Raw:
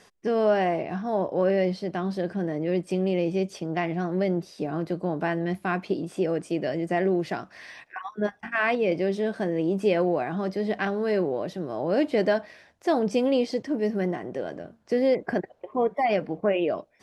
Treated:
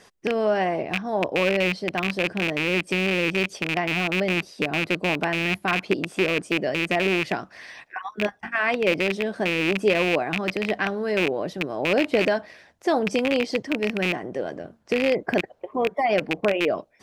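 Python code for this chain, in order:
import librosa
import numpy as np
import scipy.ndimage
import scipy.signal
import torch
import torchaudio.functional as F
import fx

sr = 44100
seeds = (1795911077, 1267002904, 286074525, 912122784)

y = fx.rattle_buzz(x, sr, strikes_db=-30.0, level_db=-16.0)
y = fx.hpss(y, sr, part='harmonic', gain_db=-5)
y = y * 10.0 ** (4.5 / 20.0)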